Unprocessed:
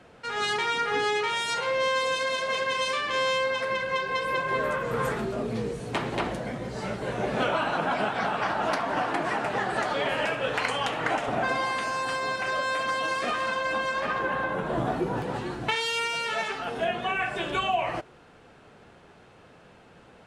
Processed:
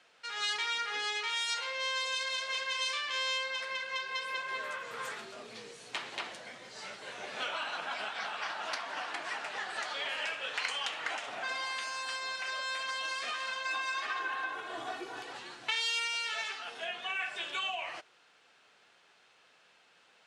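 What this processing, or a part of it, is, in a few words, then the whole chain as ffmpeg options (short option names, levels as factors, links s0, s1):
piezo pickup straight into a mixer: -filter_complex "[0:a]lowpass=5000,aderivative,asettb=1/sr,asplit=3[s0][s1][s2];[s0]atrim=end=13.654[s3];[s1]atrim=start=13.65:end=15.33,asetpts=PTS-STARTPTS,afade=t=in:d=0.004:c=qsin,afade=t=out:st=1.676:d=0.004:c=qsin,aecho=1:1:2.7:0.81,atrim=end_sample=74088[s4];[s2]atrim=start=15.326[s5];[s3][s4]acrossfade=d=0.004:c1=hsin:c2=qsin[s6];[s6][s5]acrossfade=d=0.004:c1=qsin:c2=hsin,volume=1.88"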